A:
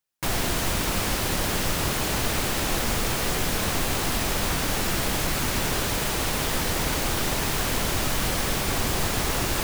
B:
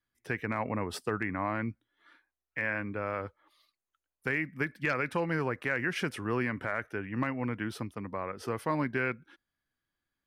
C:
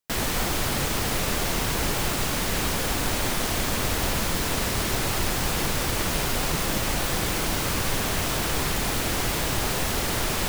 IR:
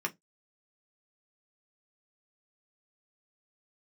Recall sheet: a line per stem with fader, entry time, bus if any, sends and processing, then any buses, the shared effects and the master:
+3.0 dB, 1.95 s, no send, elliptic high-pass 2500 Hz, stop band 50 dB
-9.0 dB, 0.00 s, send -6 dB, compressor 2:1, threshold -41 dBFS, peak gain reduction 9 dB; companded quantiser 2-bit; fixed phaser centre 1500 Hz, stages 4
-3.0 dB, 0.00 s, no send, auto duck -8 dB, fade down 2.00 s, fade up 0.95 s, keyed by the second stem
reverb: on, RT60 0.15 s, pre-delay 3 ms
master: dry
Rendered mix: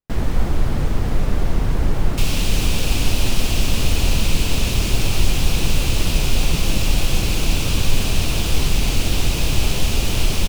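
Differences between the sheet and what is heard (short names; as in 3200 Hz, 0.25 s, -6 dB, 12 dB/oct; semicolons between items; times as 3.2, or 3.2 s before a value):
stem A +3.0 dB -> +11.5 dB; stem B: muted; reverb: off; master: extra tilt -3.5 dB/oct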